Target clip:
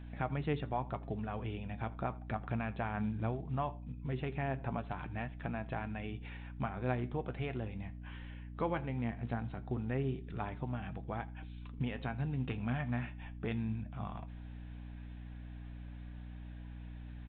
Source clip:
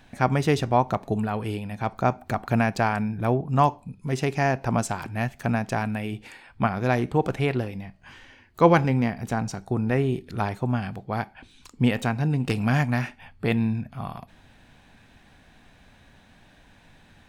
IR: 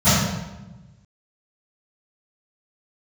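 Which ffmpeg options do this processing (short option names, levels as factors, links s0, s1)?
-filter_complex "[0:a]acompressor=threshold=0.0224:ratio=2,flanger=delay=6:depth=3.8:regen=60:speed=0.18:shape=triangular,acrusher=bits=7:mode=log:mix=0:aa=0.000001,aeval=exprs='val(0)+0.00708*(sin(2*PI*60*n/s)+sin(2*PI*2*60*n/s)/2+sin(2*PI*3*60*n/s)/3+sin(2*PI*4*60*n/s)/4+sin(2*PI*5*60*n/s)/5)':c=same,asplit=2[s0][s1];[s1]aecho=0:1:82:0.0708[s2];[s0][s2]amix=inputs=2:normalize=0,aresample=8000,aresample=44100,volume=0.75"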